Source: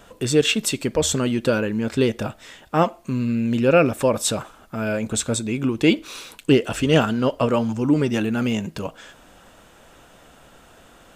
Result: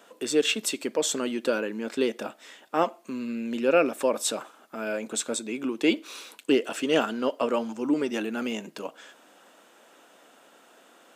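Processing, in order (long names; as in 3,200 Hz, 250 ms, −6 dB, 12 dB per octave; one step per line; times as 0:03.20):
high-pass filter 250 Hz 24 dB per octave
level −5 dB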